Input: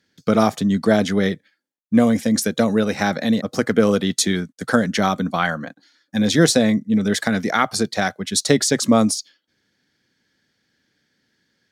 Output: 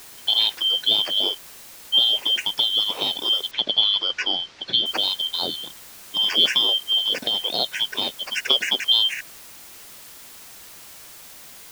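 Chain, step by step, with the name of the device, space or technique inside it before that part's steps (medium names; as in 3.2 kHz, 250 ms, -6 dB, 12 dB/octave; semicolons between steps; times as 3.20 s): split-band scrambled radio (four frequency bands reordered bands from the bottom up 2413; band-pass 350–3000 Hz; white noise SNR 19 dB); 3.51–4.86 s: low-pass 5.2 kHz 24 dB/octave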